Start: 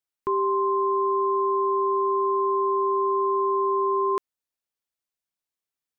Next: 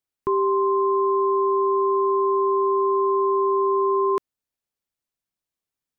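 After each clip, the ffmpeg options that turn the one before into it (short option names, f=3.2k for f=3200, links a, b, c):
-af "lowshelf=f=410:g=7.5"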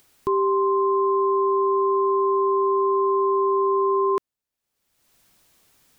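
-af "acompressor=mode=upward:threshold=-38dB:ratio=2.5"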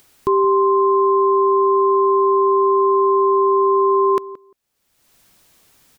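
-filter_complex "[0:a]asplit=2[a][b];[b]adelay=174,lowpass=f=1.1k:p=1,volume=-16dB,asplit=2[c][d];[d]adelay=174,lowpass=f=1.1k:p=1,volume=0.15[e];[a][c][e]amix=inputs=3:normalize=0,volume=5.5dB"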